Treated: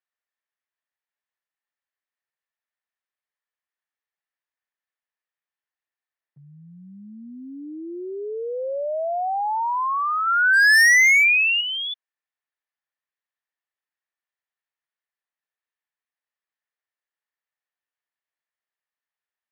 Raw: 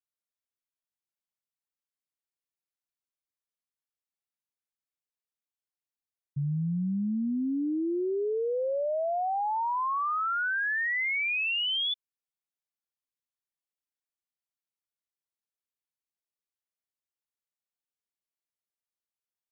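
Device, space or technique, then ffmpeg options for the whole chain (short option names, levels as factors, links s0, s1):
megaphone: -filter_complex "[0:a]asettb=1/sr,asplit=3[s0][s1][s2];[s0]atrim=end=10.274[s3];[s1]atrim=start=10.27:end=11.61,asetpts=PTS-STARTPTS,afade=t=in:d=0.004:c=qsin,afade=t=out:st=1.336:d=0.004:c=qsin,equalizer=f=125:t=o:w=1:g=3,equalizer=f=250:t=o:w=1:g=8,equalizer=f=500:t=o:w=1:g=5,equalizer=f=1000:t=o:w=1:g=-5,equalizer=f=2000:t=o:w=1:g=11[s4];[s2]atrim=start=11.606[s5];[s3][s4]acrossfade=d=0.004:c1=hsin:c2=qsin[s6];[s6][s5]acrossfade=d=0.004:c1=qsin:c2=hsin,highpass=600,lowpass=2700,equalizer=f=1800:t=o:w=0.21:g=10,asoftclip=type=hard:threshold=0.112,volume=2"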